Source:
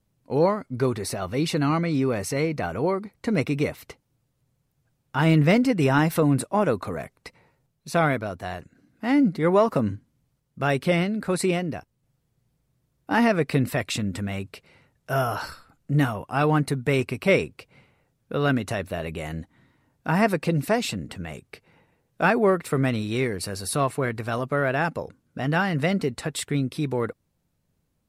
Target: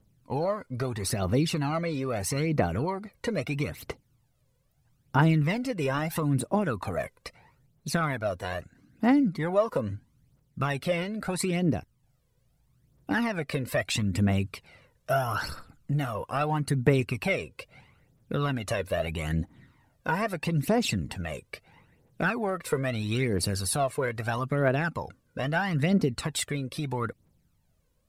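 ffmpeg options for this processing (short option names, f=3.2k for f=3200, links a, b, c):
-af "acompressor=threshold=-27dB:ratio=3,aphaser=in_gain=1:out_gain=1:delay=2.1:decay=0.61:speed=0.77:type=triangular"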